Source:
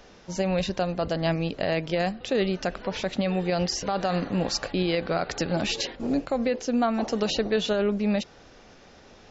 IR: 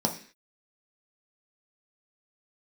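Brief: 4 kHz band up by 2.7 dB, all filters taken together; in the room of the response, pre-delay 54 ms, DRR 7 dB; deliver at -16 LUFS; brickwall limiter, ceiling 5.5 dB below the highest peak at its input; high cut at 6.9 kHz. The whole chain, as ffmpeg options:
-filter_complex "[0:a]lowpass=6900,equalizer=f=4000:t=o:g=4,alimiter=limit=0.126:level=0:latency=1,asplit=2[s0][s1];[1:a]atrim=start_sample=2205,adelay=54[s2];[s1][s2]afir=irnorm=-1:irlink=0,volume=0.158[s3];[s0][s3]amix=inputs=2:normalize=0,volume=2.82"

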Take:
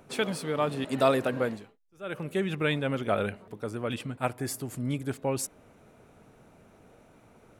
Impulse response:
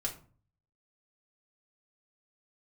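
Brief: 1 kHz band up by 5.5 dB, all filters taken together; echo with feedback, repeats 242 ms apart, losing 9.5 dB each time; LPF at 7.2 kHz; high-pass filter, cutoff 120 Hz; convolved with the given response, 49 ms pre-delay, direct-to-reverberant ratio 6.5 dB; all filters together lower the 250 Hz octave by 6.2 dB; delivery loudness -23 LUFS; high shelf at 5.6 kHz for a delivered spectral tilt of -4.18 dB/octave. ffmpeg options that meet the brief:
-filter_complex "[0:a]highpass=120,lowpass=7200,equalizer=f=250:t=o:g=-8,equalizer=f=1000:t=o:g=8,highshelf=f=5600:g=5,aecho=1:1:242|484|726|968:0.335|0.111|0.0365|0.012,asplit=2[s0][s1];[1:a]atrim=start_sample=2205,adelay=49[s2];[s1][s2]afir=irnorm=-1:irlink=0,volume=0.376[s3];[s0][s3]amix=inputs=2:normalize=0,volume=1.88"

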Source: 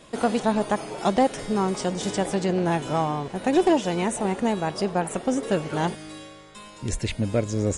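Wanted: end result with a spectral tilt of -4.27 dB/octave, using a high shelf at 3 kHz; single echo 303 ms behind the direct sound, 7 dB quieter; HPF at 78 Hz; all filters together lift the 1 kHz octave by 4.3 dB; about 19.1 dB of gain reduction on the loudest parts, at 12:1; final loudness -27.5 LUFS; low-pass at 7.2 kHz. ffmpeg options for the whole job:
-af "highpass=78,lowpass=7200,equalizer=f=1000:t=o:g=5,highshelf=f=3000:g=8,acompressor=threshold=0.0224:ratio=12,aecho=1:1:303:0.447,volume=2.99"

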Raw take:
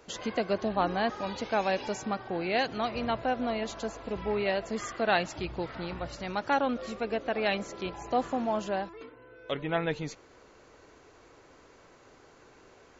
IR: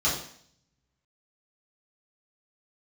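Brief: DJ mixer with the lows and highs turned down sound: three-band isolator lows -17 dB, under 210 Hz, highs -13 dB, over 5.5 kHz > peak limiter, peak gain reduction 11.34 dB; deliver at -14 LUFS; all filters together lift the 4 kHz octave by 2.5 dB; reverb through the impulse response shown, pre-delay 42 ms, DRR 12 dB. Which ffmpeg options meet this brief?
-filter_complex "[0:a]equalizer=f=4000:t=o:g=4.5,asplit=2[s0][s1];[1:a]atrim=start_sample=2205,adelay=42[s2];[s1][s2]afir=irnorm=-1:irlink=0,volume=0.0668[s3];[s0][s3]amix=inputs=2:normalize=0,acrossover=split=210 5500:gain=0.141 1 0.224[s4][s5][s6];[s4][s5][s6]amix=inputs=3:normalize=0,volume=10,alimiter=limit=0.794:level=0:latency=1"

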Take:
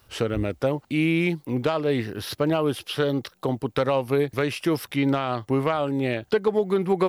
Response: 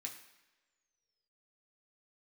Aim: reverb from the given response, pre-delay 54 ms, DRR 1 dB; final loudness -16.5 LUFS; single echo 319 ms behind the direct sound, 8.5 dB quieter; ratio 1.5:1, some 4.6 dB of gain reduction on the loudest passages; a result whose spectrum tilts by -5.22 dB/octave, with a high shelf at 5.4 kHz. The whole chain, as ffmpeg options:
-filter_complex "[0:a]highshelf=f=5400:g=-4.5,acompressor=threshold=0.0316:ratio=1.5,aecho=1:1:319:0.376,asplit=2[s0][s1];[1:a]atrim=start_sample=2205,adelay=54[s2];[s1][s2]afir=irnorm=-1:irlink=0,volume=1.26[s3];[s0][s3]amix=inputs=2:normalize=0,volume=3.16"

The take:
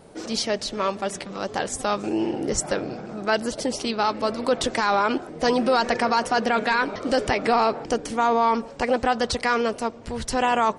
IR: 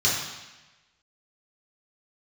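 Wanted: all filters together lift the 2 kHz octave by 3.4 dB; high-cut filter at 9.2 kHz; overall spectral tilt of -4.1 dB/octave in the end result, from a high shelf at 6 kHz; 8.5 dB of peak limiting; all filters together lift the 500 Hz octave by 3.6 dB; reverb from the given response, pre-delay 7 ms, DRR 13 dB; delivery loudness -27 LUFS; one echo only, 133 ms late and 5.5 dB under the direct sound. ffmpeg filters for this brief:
-filter_complex "[0:a]lowpass=9200,equalizer=f=500:t=o:g=4,equalizer=f=2000:t=o:g=5,highshelf=f=6000:g=-7.5,alimiter=limit=0.158:level=0:latency=1,aecho=1:1:133:0.531,asplit=2[s0][s1];[1:a]atrim=start_sample=2205,adelay=7[s2];[s1][s2]afir=irnorm=-1:irlink=0,volume=0.0447[s3];[s0][s3]amix=inputs=2:normalize=0,volume=0.794"

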